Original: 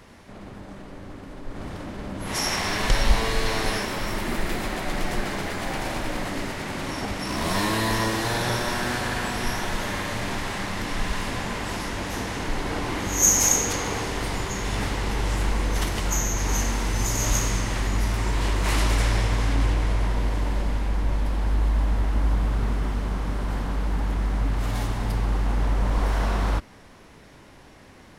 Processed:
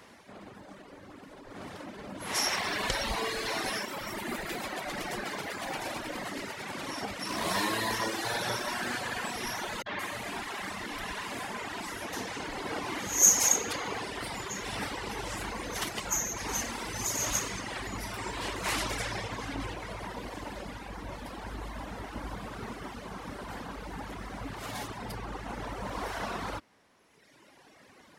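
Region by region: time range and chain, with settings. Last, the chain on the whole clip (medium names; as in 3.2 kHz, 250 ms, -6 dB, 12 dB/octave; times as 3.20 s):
9.82–12.13 s: band-stop 520 Hz, Q 9.3 + three bands offset in time lows, mids, highs 40/170 ms, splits 150/5300 Hz
whole clip: reverb removal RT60 2 s; high-pass 310 Hz 6 dB/octave; trim -1.5 dB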